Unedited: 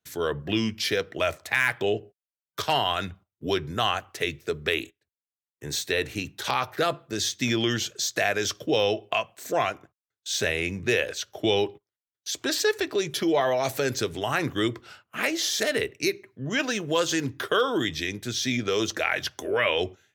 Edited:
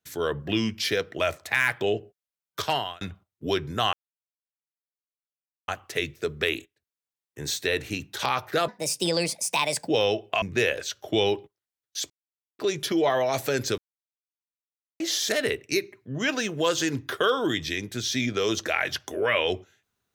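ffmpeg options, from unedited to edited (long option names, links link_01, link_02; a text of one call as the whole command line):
ffmpeg -i in.wav -filter_complex "[0:a]asplit=10[link_01][link_02][link_03][link_04][link_05][link_06][link_07][link_08][link_09][link_10];[link_01]atrim=end=3.01,asetpts=PTS-STARTPTS,afade=type=out:start_time=2.66:duration=0.35[link_11];[link_02]atrim=start=3.01:end=3.93,asetpts=PTS-STARTPTS,afade=type=in:duration=0.004:curve=hsin,afade=type=out:start_time=0.916:duration=0.004:curve=hsin,apad=pad_dur=1.75[link_12];[link_03]atrim=start=3.93:end=6.934,asetpts=PTS-STARTPTS,afade=type=in:duration=0.004:curve=hsin[link_13];[link_04]atrim=start=6.93:end=8.67,asetpts=PTS-STARTPTS,asetrate=63945,aresample=44100[link_14];[link_05]atrim=start=8.666:end=9.212[link_15];[link_06]atrim=start=10.728:end=12.41,asetpts=PTS-STARTPTS,afade=type=out:start_time=1.678:duration=0.004:curve=hsin[link_16];[link_07]atrim=start=12.41:end=12.9,asetpts=PTS-STARTPTS,volume=0[link_17];[link_08]atrim=start=12.9:end=14.09,asetpts=PTS-STARTPTS,afade=type=in:duration=0.004:curve=hsin,afade=type=out:start_time=1.186:duration=0.004:curve=hsin[link_18];[link_09]atrim=start=14.09:end=15.31,asetpts=PTS-STARTPTS,volume=0[link_19];[link_10]atrim=start=15.31,asetpts=PTS-STARTPTS,afade=type=in:duration=0.004:curve=hsin[link_20];[link_11][link_12][link_13]concat=n=3:v=0:a=1[link_21];[link_21][link_14]acrossfade=duration=0.004:curve1=hsin:curve2=hsin[link_22];[link_22][link_15]acrossfade=duration=0.004:curve1=hsin:curve2=hsin[link_23];[link_16][link_17][link_18][link_19][link_20]concat=n=5:v=0:a=1[link_24];[link_23][link_24]acrossfade=duration=0.004:curve1=hsin:curve2=hsin" out.wav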